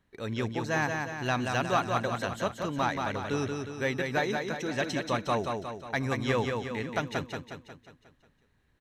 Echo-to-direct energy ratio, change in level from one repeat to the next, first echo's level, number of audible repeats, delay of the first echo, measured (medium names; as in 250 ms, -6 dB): -3.0 dB, -5.5 dB, -4.5 dB, 6, 180 ms